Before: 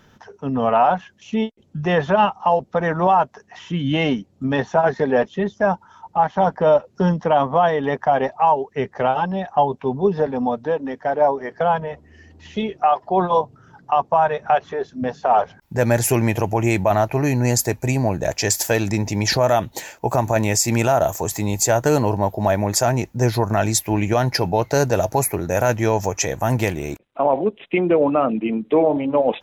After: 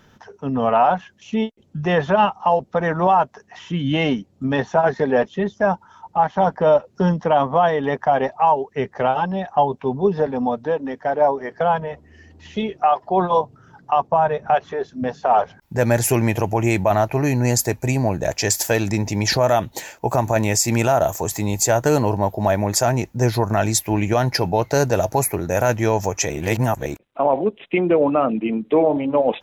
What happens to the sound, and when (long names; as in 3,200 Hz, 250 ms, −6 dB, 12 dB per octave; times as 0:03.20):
0:14.07–0:14.54: tilt shelving filter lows +4 dB, about 650 Hz
0:26.30–0:26.86: reverse